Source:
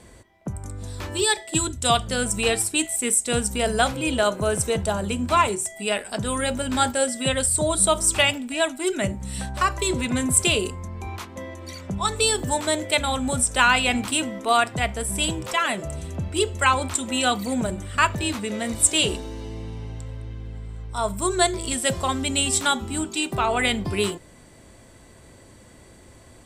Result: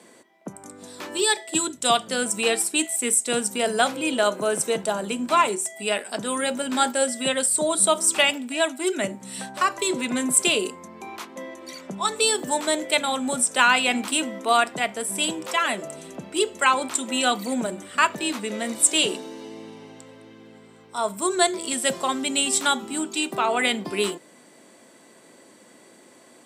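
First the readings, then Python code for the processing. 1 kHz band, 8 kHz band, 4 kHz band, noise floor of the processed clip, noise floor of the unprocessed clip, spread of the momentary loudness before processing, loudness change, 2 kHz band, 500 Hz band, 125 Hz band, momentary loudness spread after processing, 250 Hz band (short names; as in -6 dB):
0.0 dB, 0.0 dB, 0.0 dB, -52 dBFS, -49 dBFS, 16 LU, 0.0 dB, 0.0 dB, 0.0 dB, -14.0 dB, 18 LU, -1.0 dB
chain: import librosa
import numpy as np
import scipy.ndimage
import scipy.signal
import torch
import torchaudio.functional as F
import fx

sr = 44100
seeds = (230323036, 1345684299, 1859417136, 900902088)

y = scipy.signal.sosfilt(scipy.signal.butter(4, 210.0, 'highpass', fs=sr, output='sos'), x)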